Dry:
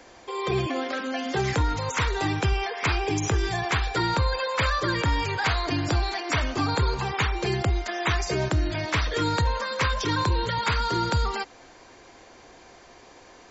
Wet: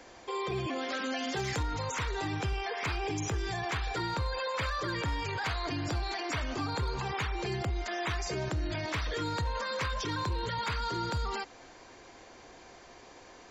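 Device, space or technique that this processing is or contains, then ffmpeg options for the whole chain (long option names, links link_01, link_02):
clipper into limiter: -filter_complex "[0:a]asettb=1/sr,asplit=3[link_01][link_02][link_03];[link_01]atrim=end=0.784[link_04];[link_02]atrim=start=0.78:end=1.63,asetpts=PTS-STARTPTS,afade=type=in:duration=0.004:curve=qsin,afade=type=out:start_time=0.846:duration=0.004:curve=qsin,highshelf=frequency=2200:gain=6.5[link_05];[link_03]atrim=start=1.626[link_06];[link_04][link_05]acrossfade=duration=0.004:curve1=hsin:curve2=qsin[link_07];[link_07][link_06]acrossfade=duration=0.004:curve1=qsin:curve2=hsin,asoftclip=type=hard:threshold=-17.5dB,alimiter=limit=-24dB:level=0:latency=1:release=21,volume=-2.5dB"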